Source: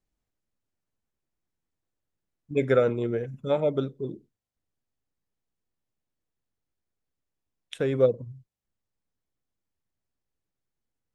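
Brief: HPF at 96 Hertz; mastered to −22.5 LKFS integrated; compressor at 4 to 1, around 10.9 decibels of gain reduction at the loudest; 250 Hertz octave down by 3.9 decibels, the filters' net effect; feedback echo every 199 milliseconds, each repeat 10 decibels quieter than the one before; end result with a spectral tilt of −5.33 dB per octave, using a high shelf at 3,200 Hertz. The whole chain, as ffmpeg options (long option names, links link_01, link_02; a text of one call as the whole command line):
ffmpeg -i in.wav -af "highpass=96,equalizer=frequency=250:width_type=o:gain=-5,highshelf=frequency=3200:gain=6.5,acompressor=threshold=-29dB:ratio=4,aecho=1:1:199|398|597|796:0.316|0.101|0.0324|0.0104,volume=12dB" out.wav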